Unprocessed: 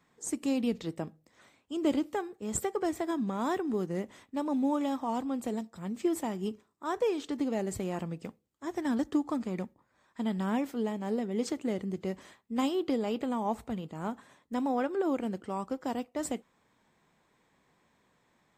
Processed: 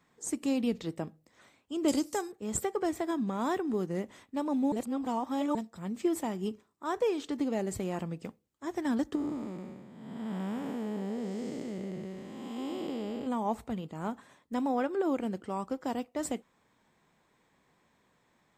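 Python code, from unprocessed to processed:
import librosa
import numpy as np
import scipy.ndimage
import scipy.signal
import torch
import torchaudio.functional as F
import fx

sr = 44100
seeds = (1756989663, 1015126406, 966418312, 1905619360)

y = fx.band_shelf(x, sr, hz=7500.0, db=16.0, octaves=1.7, at=(1.88, 2.32))
y = fx.spec_blur(y, sr, span_ms=437.0, at=(9.15, 13.27))
y = fx.edit(y, sr, fx.reverse_span(start_s=4.72, length_s=0.83), tone=tone)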